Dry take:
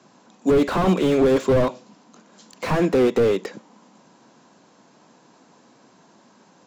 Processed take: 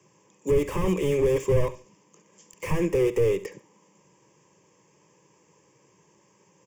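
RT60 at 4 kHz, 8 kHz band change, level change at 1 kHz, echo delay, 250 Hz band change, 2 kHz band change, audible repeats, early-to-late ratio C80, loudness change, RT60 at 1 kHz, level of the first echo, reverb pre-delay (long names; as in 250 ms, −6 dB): no reverb audible, −1.0 dB, −10.5 dB, 70 ms, −8.5 dB, −6.5 dB, 2, no reverb audible, −5.0 dB, no reverb audible, −17.0 dB, no reverb audible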